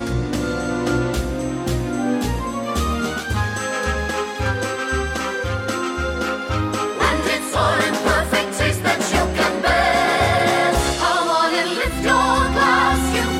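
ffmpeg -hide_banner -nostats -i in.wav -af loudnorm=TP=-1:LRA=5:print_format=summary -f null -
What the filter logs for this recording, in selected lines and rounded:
Input Integrated:    -18.9 LUFS
Input True Peak:      -3.9 dBTP
Input LRA:             5.2 LU
Input Threshold:     -28.9 LUFS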